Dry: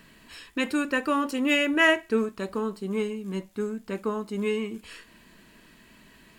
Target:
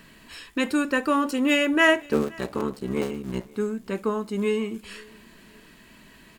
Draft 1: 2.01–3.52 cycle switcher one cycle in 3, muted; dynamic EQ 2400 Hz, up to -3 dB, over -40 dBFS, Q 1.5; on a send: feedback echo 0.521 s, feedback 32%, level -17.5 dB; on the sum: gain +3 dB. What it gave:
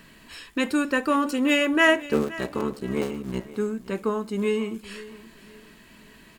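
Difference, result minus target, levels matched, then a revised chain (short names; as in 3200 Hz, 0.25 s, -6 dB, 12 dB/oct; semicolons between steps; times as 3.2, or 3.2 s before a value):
echo-to-direct +7.5 dB
2.01–3.52 cycle switcher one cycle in 3, muted; dynamic EQ 2400 Hz, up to -3 dB, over -40 dBFS, Q 1.5; on a send: feedback echo 0.521 s, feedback 32%, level -25 dB; on the sum: gain +3 dB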